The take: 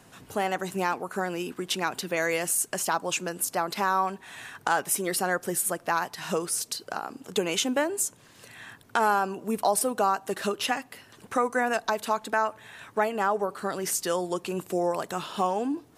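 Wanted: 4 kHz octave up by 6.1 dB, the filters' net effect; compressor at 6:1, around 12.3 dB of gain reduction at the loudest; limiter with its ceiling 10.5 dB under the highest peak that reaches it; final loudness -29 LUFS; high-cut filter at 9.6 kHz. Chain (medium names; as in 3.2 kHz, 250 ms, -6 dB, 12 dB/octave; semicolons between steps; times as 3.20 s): low-pass 9.6 kHz; peaking EQ 4 kHz +8 dB; compression 6:1, threshold -33 dBFS; trim +9.5 dB; peak limiter -17 dBFS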